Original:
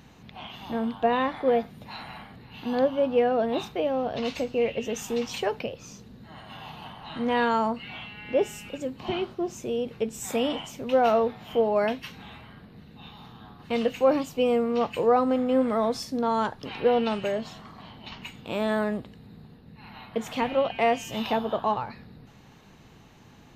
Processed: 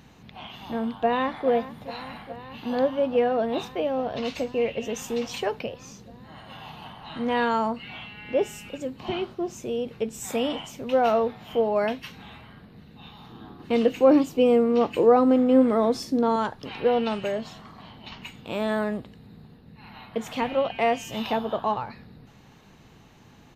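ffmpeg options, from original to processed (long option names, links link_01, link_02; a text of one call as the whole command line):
ffmpeg -i in.wav -filter_complex "[0:a]asplit=2[link_01][link_02];[link_02]afade=type=in:start_time=0.85:duration=0.01,afade=type=out:start_time=1.48:duration=0.01,aecho=0:1:420|840|1260|1680|2100|2520|2940|3360|3780|4200|4620|5040:0.177828|0.151154|0.128481|0.109209|0.0928273|0.0789032|0.0670677|0.0570076|0.0484564|0.041188|0.0350098|0.0297583[link_03];[link_01][link_03]amix=inputs=2:normalize=0,asettb=1/sr,asplit=3[link_04][link_05][link_06];[link_04]atrim=end=13.304[link_07];[link_05]atrim=start=13.3:end=16.36,asetpts=PTS-STARTPTS,afade=type=in:duration=0.004:curve=qsin,afade=type=out:start_time=3.056:duration=0.004:curve=qsin,equalizer=frequency=330:width_type=o:width=0.85:gain=11[link_08];[link_06]atrim=start=16.356[link_09];[link_07][link_08]acrossfade=duration=0.004:curve1=hsin:curve2=qsin[link_10];[link_10][link_09]acrossfade=duration=0.004:curve1=qsin:curve2=hsin" out.wav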